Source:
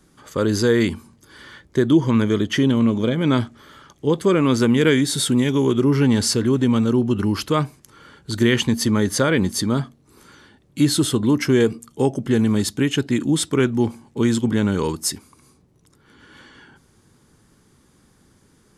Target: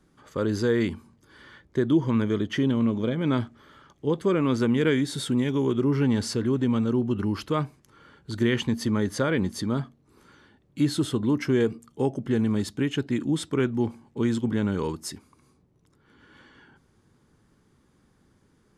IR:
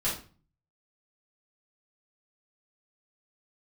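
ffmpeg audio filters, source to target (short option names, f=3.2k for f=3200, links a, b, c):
-af "highshelf=f=4.6k:g=-10,volume=-6dB"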